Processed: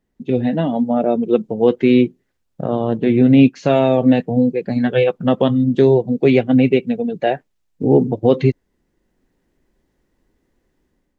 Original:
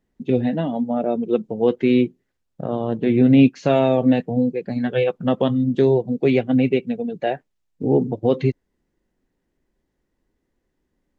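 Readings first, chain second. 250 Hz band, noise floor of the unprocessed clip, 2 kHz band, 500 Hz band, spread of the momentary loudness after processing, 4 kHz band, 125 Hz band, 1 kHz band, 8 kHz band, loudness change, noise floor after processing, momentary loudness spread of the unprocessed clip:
+3.5 dB, −75 dBFS, +4.0 dB, +4.0 dB, 8 LU, +4.0 dB, +3.5 dB, +4.0 dB, can't be measured, +4.0 dB, −70 dBFS, 9 LU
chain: automatic gain control gain up to 7.5 dB

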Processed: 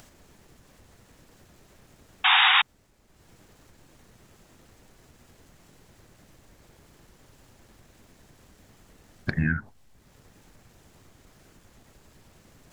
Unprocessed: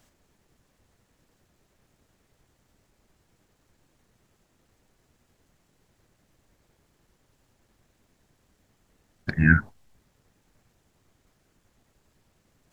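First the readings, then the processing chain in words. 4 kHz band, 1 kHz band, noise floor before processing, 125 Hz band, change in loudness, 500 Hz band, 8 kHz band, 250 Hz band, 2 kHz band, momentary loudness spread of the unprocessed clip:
+31.0 dB, +14.0 dB, −70 dBFS, −5.5 dB, +1.0 dB, +0.5 dB, can't be measured, −5.5 dB, +3.0 dB, 15 LU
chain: downward compressor 8 to 1, threshold −25 dBFS, peak gain reduction 14 dB
sound drawn into the spectrogram noise, 0:02.24–0:02.62, 730–3,800 Hz −22 dBFS
upward compression, threshold −49 dBFS
level +3.5 dB

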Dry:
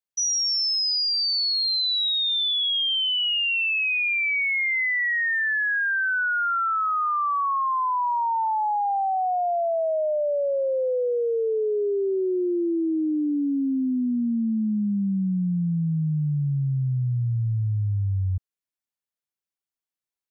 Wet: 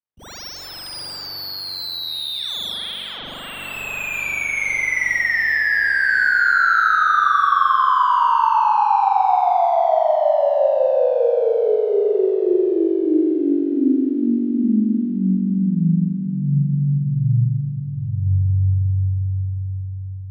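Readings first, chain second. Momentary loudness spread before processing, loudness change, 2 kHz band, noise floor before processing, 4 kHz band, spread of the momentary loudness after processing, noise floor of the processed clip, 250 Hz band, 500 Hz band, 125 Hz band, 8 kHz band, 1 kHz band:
5 LU, +5.0 dB, +5.5 dB, below −85 dBFS, −5.5 dB, 13 LU, −33 dBFS, +6.0 dB, +7.0 dB, +6.0 dB, can't be measured, +8.0 dB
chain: running median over 15 samples
reverb reduction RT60 1.9 s
on a send: bucket-brigade delay 357 ms, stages 4,096, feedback 60%, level −6 dB
on the sum: spring reverb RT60 2.9 s, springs 42 ms, chirp 55 ms, DRR −9.5 dB

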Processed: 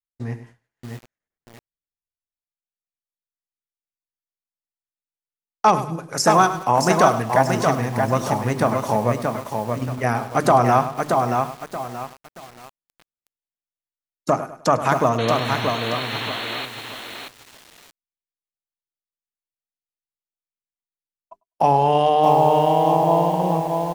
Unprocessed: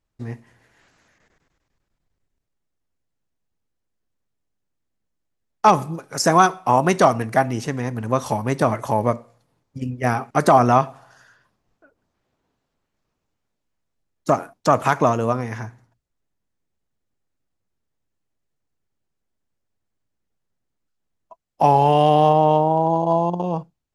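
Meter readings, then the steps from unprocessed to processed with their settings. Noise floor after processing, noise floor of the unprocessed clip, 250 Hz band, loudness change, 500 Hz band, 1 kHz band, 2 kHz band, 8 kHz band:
below −85 dBFS, −78 dBFS, −0.5 dB, −0.5 dB, +0.5 dB, +0.5 dB, +1.5 dB, +1.5 dB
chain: mains-hum notches 50/100/150/200/250/300/350/400 Hz
on a send: repeating echo 102 ms, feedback 30%, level −14 dB
on the sum: downward expander −41 dBFS
in parallel at −0.5 dB: downward compressor 6 to 1, threshold −26 dBFS, peak gain reduction 16.5 dB
on the sum: sound drawn into the spectrogram noise, 0:15.18–0:16.66, 210–4,400 Hz −27 dBFS
feedback echo at a low word length 628 ms, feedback 35%, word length 6 bits, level −4 dB
level −3 dB

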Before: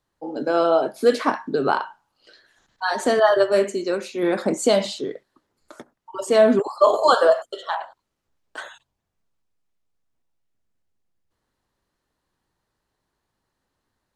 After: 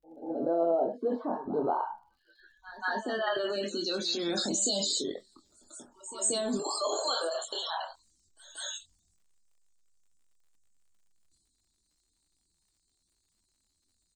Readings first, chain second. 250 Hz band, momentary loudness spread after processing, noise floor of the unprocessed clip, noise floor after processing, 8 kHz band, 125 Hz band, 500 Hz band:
−9.5 dB, 17 LU, −79 dBFS, −77 dBFS, +3.5 dB, −9.5 dB, −13.0 dB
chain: octave-band graphic EQ 125/250/500/1,000/2,000/4,000/8,000 Hz −10/−3/−9/−7/−11/+5/+9 dB
transient designer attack −8 dB, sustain +8 dB
downward compressor 6 to 1, threshold −31 dBFS, peak gain reduction 12 dB
spectral peaks only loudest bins 64
low-pass filter sweep 650 Hz → 9,800 Hz, 0:01.49–0:05.27
double-tracking delay 24 ms −7.5 dB
backwards echo 183 ms −15.5 dB
surface crackle 97 per second −66 dBFS
level +2 dB

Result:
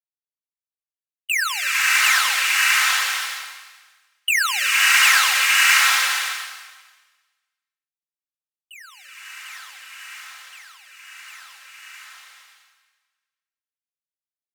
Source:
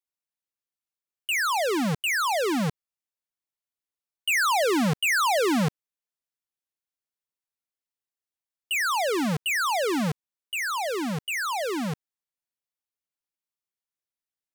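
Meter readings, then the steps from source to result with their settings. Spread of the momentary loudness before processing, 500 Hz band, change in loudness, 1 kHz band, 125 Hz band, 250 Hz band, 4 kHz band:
9 LU, below −20 dB, +9.0 dB, +1.0 dB, below −40 dB, below −40 dB, +10.5 dB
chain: comb filter 3.8 ms, depth 55%
pitch vibrato 1.2 Hz 16 cents
noise gate with hold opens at −20 dBFS
high-pass filter 1,400 Hz 24 dB per octave
slow-attack reverb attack 660 ms, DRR −6.5 dB
level +3.5 dB

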